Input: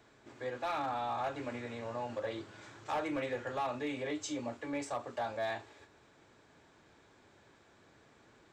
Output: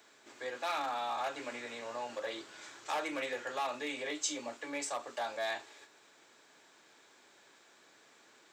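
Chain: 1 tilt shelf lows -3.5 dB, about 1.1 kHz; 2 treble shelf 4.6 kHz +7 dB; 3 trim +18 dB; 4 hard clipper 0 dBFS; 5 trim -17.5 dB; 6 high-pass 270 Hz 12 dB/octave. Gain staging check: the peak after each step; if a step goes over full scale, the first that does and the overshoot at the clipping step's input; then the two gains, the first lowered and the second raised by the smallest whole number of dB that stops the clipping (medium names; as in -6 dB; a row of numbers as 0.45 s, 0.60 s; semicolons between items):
-26.5 dBFS, -21.5 dBFS, -3.5 dBFS, -3.5 dBFS, -21.0 dBFS, -21.0 dBFS; nothing clips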